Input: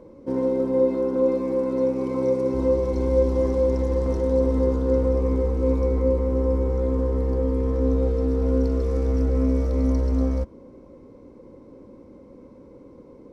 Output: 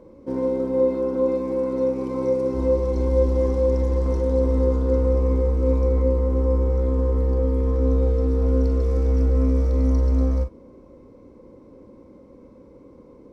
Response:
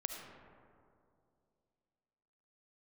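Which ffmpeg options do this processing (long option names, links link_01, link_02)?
-filter_complex "[1:a]atrim=start_sample=2205,afade=type=out:start_time=0.14:duration=0.01,atrim=end_sample=6615,asetrate=79380,aresample=44100[link_01];[0:a][link_01]afir=irnorm=-1:irlink=0,volume=6dB"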